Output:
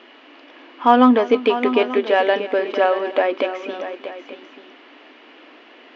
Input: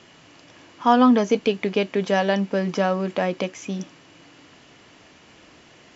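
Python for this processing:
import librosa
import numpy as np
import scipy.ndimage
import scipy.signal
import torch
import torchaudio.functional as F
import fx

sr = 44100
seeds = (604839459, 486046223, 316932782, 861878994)

p1 = scipy.signal.sosfilt(scipy.signal.butter(4, 3500.0, 'lowpass', fs=sr, output='sos'), x)
p2 = 10.0 ** (-21.0 / 20.0) * np.tanh(p1 / 10.0 ** (-21.0 / 20.0))
p3 = p1 + (p2 * 10.0 ** (-12.0 / 20.0))
p4 = fx.brickwall_highpass(p3, sr, low_hz=230.0)
p5 = fx.echo_multitap(p4, sr, ms=(314, 636, 887), db=(-19.0, -11.0, -15.5))
y = p5 * 10.0 ** (3.5 / 20.0)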